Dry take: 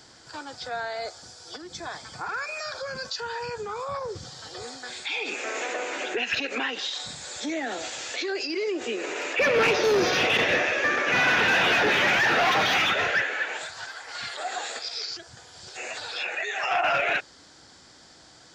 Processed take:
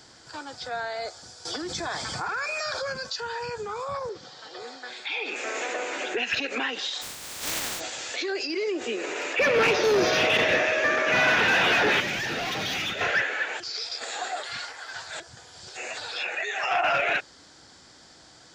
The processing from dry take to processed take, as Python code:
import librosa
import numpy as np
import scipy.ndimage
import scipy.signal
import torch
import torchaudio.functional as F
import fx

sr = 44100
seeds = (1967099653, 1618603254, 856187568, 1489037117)

y = fx.env_flatten(x, sr, amount_pct=70, at=(1.45, 2.93))
y = fx.bandpass_edges(y, sr, low_hz=270.0, high_hz=4200.0, at=(4.09, 5.36))
y = fx.spec_flatten(y, sr, power=0.14, at=(7.01, 7.79), fade=0.02)
y = fx.dmg_tone(y, sr, hz=630.0, level_db=-28.0, at=(9.96, 11.33), fade=0.02)
y = fx.peak_eq(y, sr, hz=1100.0, db=-12.5, octaves=2.5, at=(12.0, 13.01))
y = fx.edit(y, sr, fx.reverse_span(start_s=13.6, length_s=1.6), tone=tone)